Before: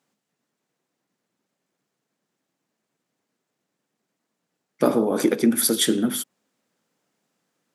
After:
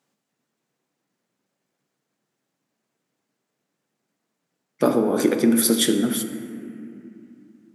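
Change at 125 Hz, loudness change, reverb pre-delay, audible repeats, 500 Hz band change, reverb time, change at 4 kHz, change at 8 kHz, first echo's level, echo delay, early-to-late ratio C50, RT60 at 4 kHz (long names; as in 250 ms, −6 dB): +1.5 dB, +1.0 dB, 5 ms, no echo audible, +1.0 dB, 2.5 s, +0.5 dB, +0.5 dB, no echo audible, no echo audible, 8.0 dB, 2.1 s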